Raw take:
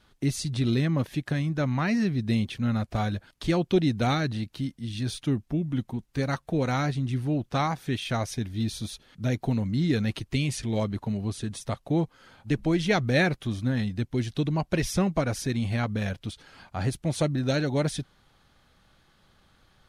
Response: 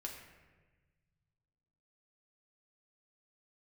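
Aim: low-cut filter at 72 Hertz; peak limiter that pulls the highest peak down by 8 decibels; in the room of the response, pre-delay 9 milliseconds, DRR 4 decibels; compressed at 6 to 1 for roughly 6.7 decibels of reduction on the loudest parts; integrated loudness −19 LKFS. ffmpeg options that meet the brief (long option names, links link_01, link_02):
-filter_complex "[0:a]highpass=72,acompressor=threshold=-26dB:ratio=6,alimiter=limit=-24dB:level=0:latency=1,asplit=2[link_01][link_02];[1:a]atrim=start_sample=2205,adelay=9[link_03];[link_02][link_03]afir=irnorm=-1:irlink=0,volume=-2dB[link_04];[link_01][link_04]amix=inputs=2:normalize=0,volume=13dB"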